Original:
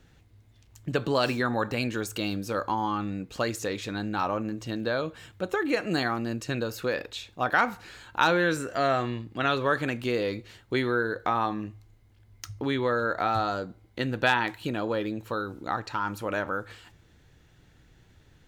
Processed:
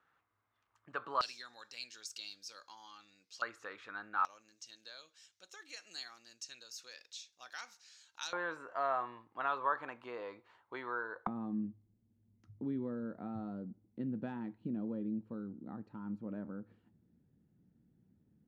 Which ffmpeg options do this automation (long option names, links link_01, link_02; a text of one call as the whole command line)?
ffmpeg -i in.wav -af "asetnsamples=nb_out_samples=441:pad=0,asendcmd='1.21 bandpass f 5300;3.42 bandpass f 1300;4.25 bandpass f 5800;8.33 bandpass f 1000;11.27 bandpass f 210',bandpass=frequency=1200:width_type=q:width=3.9:csg=0" out.wav